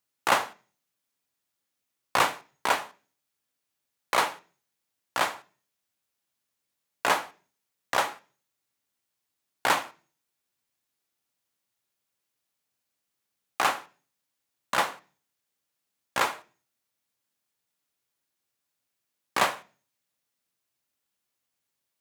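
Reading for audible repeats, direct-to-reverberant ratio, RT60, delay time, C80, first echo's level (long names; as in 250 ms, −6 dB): no echo audible, 11.5 dB, 0.40 s, no echo audible, 25.5 dB, no echo audible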